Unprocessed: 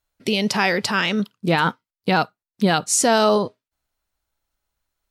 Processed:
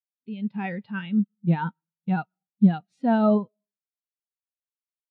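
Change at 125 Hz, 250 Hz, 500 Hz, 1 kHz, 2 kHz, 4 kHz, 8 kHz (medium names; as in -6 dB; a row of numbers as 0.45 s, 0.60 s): +0.5 dB, +0.5 dB, -8.5 dB, -10.0 dB, -14.5 dB, under -20 dB, under -40 dB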